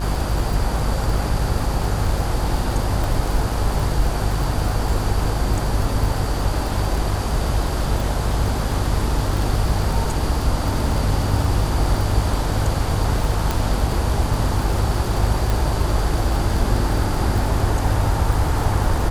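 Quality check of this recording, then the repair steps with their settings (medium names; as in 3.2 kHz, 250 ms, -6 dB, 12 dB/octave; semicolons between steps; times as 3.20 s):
buzz 50 Hz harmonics 34 -24 dBFS
crackle 39 per s -23 dBFS
3.04 s: pop
13.51 s: pop
15.50 s: pop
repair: de-click; de-hum 50 Hz, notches 34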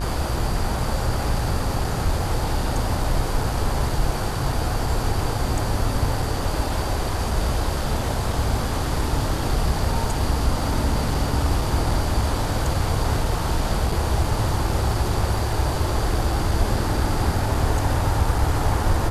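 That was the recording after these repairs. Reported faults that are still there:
15.50 s: pop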